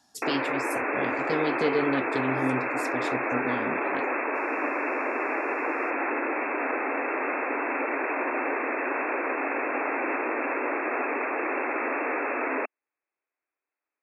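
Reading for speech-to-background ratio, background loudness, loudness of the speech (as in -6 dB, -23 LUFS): -3.5 dB, -28.0 LUFS, -31.5 LUFS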